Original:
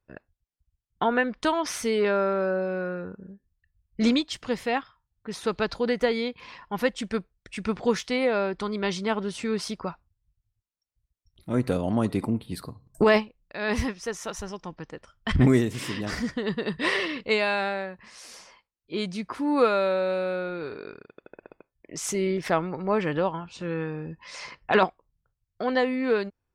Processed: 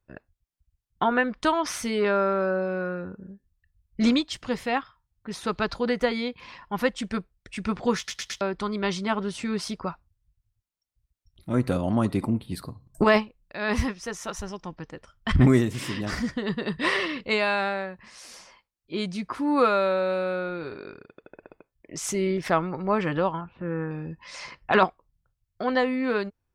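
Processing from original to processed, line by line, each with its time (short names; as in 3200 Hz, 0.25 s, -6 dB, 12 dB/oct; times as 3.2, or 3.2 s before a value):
7.97 stutter in place 0.11 s, 4 plays
23.41–23.91 LPF 1900 Hz 24 dB/oct
whole clip: low shelf 150 Hz +3.5 dB; notch 450 Hz, Q 12; dynamic EQ 1200 Hz, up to +4 dB, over -40 dBFS, Q 2.4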